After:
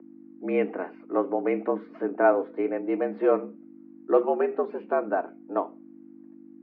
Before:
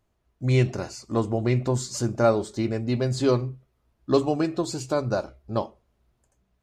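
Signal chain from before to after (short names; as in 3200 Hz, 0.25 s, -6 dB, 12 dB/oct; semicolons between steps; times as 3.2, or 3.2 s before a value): hum 50 Hz, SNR 11 dB; mistuned SSB +82 Hz 180–2200 Hz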